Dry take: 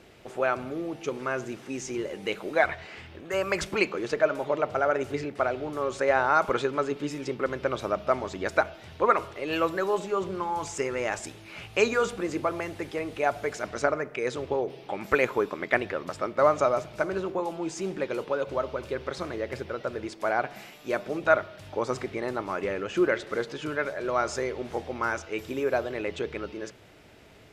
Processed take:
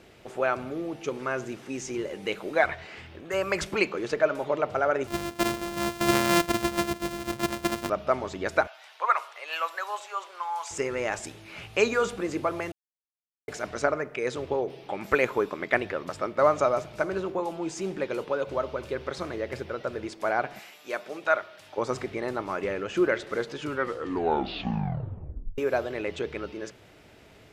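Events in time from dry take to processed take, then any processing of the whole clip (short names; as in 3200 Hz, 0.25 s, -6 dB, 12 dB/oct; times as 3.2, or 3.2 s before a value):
5.07–7.9 sample sorter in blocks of 128 samples
8.67–10.71 HPF 750 Hz 24 dB/oct
12.72–13.48 mute
20.59–21.78 HPF 770 Hz 6 dB/oct
23.61 tape stop 1.97 s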